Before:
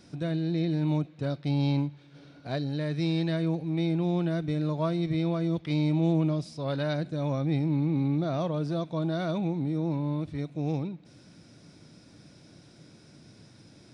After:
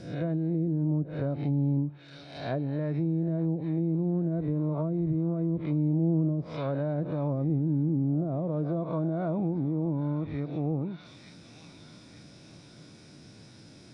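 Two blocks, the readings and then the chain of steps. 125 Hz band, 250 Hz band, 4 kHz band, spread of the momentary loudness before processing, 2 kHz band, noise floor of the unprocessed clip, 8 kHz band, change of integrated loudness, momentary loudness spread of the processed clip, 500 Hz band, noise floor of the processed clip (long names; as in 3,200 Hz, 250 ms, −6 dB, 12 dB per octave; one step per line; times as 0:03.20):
0.0 dB, 0.0 dB, below −10 dB, 6 LU, −7.0 dB, −55 dBFS, can't be measured, −0.5 dB, 5 LU, −1.0 dB, −52 dBFS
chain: peak hold with a rise ahead of every peak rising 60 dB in 0.66 s
delay with a high-pass on its return 893 ms, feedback 50%, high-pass 2,100 Hz, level −6 dB
treble cut that deepens with the level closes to 420 Hz, closed at −23.5 dBFS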